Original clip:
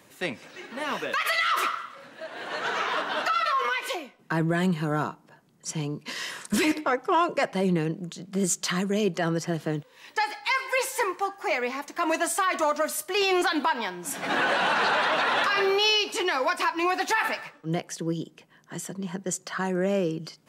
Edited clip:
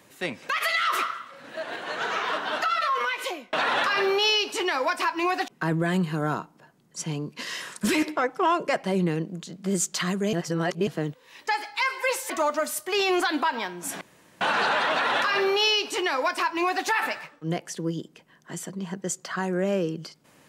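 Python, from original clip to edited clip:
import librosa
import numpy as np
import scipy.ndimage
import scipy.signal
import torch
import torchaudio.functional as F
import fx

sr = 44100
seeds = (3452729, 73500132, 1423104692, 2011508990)

y = fx.edit(x, sr, fx.cut(start_s=0.49, length_s=0.64),
    fx.clip_gain(start_s=2.08, length_s=0.32, db=5.0),
    fx.reverse_span(start_s=9.02, length_s=0.54),
    fx.cut(start_s=10.99, length_s=1.53),
    fx.room_tone_fill(start_s=14.23, length_s=0.4),
    fx.duplicate(start_s=15.13, length_s=1.95, to_s=4.17), tone=tone)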